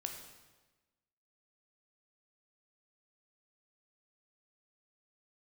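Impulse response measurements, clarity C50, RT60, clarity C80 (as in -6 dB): 5.5 dB, 1.2 s, 7.5 dB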